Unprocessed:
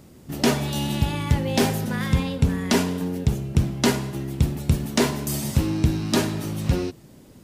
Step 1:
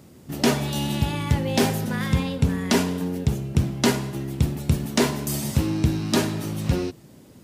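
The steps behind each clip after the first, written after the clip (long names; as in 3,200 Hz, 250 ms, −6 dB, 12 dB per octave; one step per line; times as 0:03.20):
high-pass filter 64 Hz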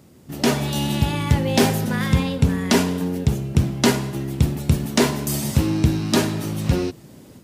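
automatic gain control gain up to 7 dB
level −1.5 dB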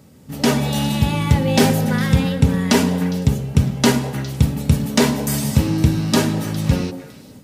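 notch comb filter 350 Hz
echo through a band-pass that steps 102 ms, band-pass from 240 Hz, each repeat 1.4 octaves, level −6 dB
level +3 dB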